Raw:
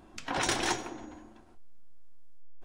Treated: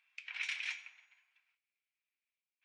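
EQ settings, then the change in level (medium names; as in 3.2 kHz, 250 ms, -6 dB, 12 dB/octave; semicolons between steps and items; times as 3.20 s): ladder high-pass 2.2 kHz, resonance 75%; tape spacing loss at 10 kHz 20 dB; +4.5 dB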